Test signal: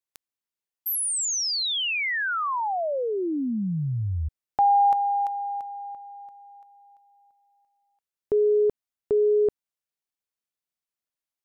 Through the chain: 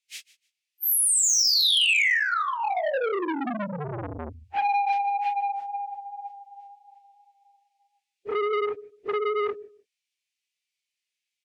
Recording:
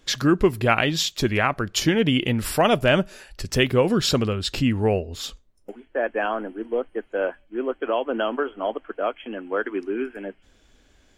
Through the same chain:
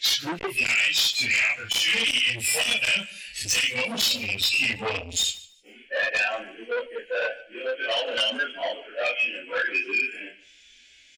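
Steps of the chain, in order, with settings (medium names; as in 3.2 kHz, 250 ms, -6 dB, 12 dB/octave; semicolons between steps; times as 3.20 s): phase randomisation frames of 100 ms; low-pass 6.6 kHz 12 dB/octave; spectral noise reduction 14 dB; tilt EQ +2 dB/octave; harmonic-percussive split percussive -9 dB; resonant high shelf 1.6 kHz +13.5 dB, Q 3; compression 5:1, threshold -26 dBFS; sine folder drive 8 dB, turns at -13 dBFS; on a send: feedback delay 150 ms, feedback 20%, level -20 dB; on the sum: transformer saturation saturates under 1.3 kHz; trim -3.5 dB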